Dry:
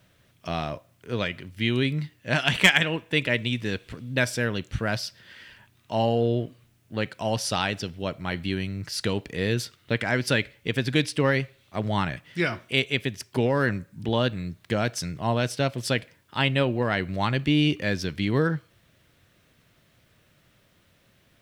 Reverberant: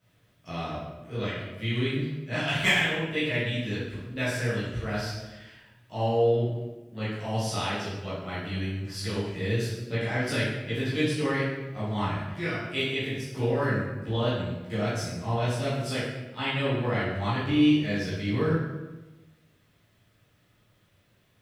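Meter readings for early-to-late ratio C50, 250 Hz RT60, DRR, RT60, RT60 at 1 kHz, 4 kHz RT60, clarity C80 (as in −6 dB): −0.5 dB, 1.4 s, −11.5 dB, 1.1 s, 1.1 s, 0.80 s, 3.0 dB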